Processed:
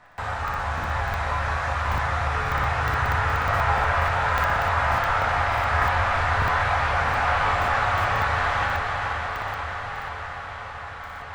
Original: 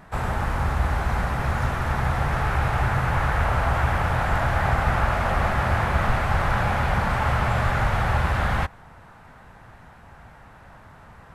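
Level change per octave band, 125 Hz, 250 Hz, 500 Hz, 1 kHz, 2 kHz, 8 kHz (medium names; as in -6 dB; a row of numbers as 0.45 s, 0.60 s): -4.5 dB, -8.0 dB, 0.0 dB, +3.0 dB, +3.5 dB, 0.0 dB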